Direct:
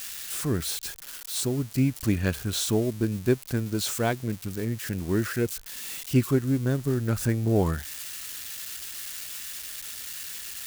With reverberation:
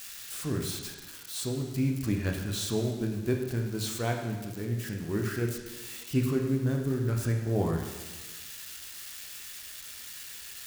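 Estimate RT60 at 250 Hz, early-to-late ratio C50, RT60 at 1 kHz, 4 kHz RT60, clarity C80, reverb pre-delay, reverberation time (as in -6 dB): 1.4 s, 4.5 dB, 1.3 s, 1.2 s, 6.5 dB, 7 ms, 1.3 s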